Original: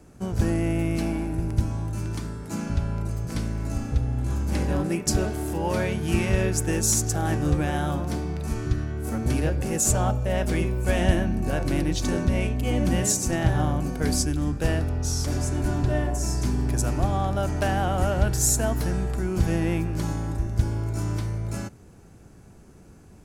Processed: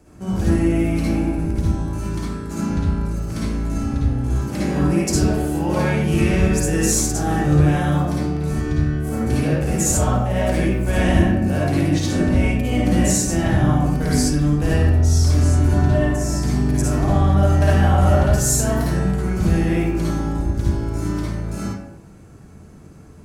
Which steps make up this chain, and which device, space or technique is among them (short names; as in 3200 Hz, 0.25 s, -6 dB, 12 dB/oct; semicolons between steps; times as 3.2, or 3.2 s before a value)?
bathroom (reverb RT60 0.75 s, pre-delay 49 ms, DRR -6 dB); gain -1.5 dB